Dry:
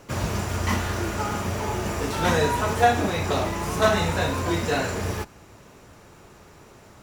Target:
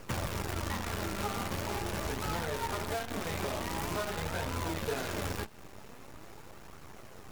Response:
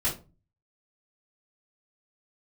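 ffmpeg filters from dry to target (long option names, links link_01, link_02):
-filter_complex "[0:a]acrossover=split=2500[link_01][link_02];[link_02]acompressor=threshold=-38dB:ratio=4:attack=1:release=60[link_03];[link_01][link_03]amix=inputs=2:normalize=0,equalizer=frequency=7100:width=0.72:gain=-3.5,acompressor=threshold=-34dB:ratio=16,acrusher=bits=7:dc=4:mix=0:aa=0.000001,flanger=delay=0.6:depth=4.5:regen=70:speed=0.46:shape=triangular,asetrate=42336,aresample=44100,volume=6.5dB"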